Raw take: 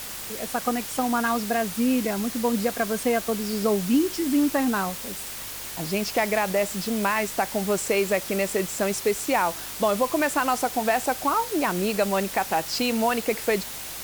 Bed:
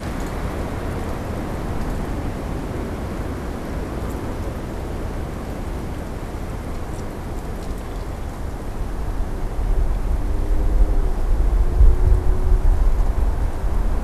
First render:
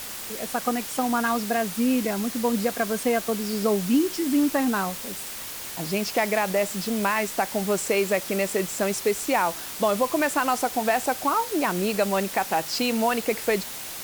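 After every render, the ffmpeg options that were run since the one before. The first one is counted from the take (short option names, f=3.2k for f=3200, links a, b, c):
-af "bandreject=f=50:t=h:w=4,bandreject=f=100:t=h:w=4,bandreject=f=150:t=h:w=4"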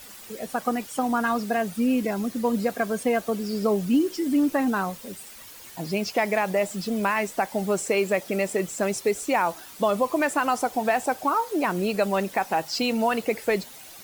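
-af "afftdn=nr=11:nf=-36"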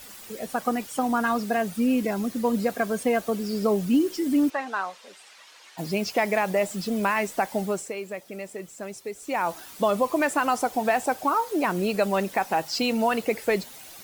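-filter_complex "[0:a]asplit=3[a][b][c];[a]afade=t=out:st=4.49:d=0.02[d];[b]highpass=690,lowpass=5k,afade=t=in:st=4.49:d=0.02,afade=t=out:st=5.77:d=0.02[e];[c]afade=t=in:st=5.77:d=0.02[f];[d][e][f]amix=inputs=3:normalize=0,asplit=3[g][h][i];[g]atrim=end=7.94,asetpts=PTS-STARTPTS,afade=t=out:st=7.57:d=0.37:silence=0.281838[j];[h]atrim=start=7.94:end=9.19,asetpts=PTS-STARTPTS,volume=-11dB[k];[i]atrim=start=9.19,asetpts=PTS-STARTPTS,afade=t=in:d=0.37:silence=0.281838[l];[j][k][l]concat=n=3:v=0:a=1"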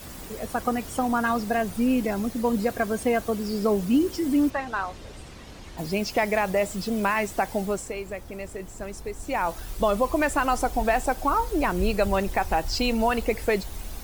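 -filter_complex "[1:a]volume=-16.5dB[a];[0:a][a]amix=inputs=2:normalize=0"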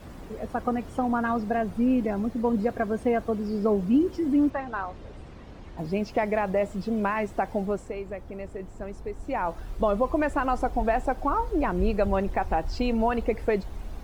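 -af "lowpass=f=1.1k:p=1"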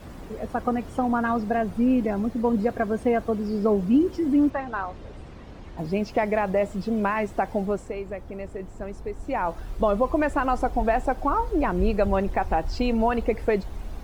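-af "volume=2dB"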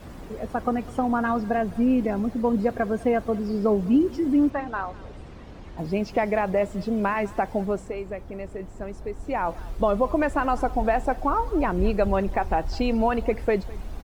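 -af "aecho=1:1:204:0.0841"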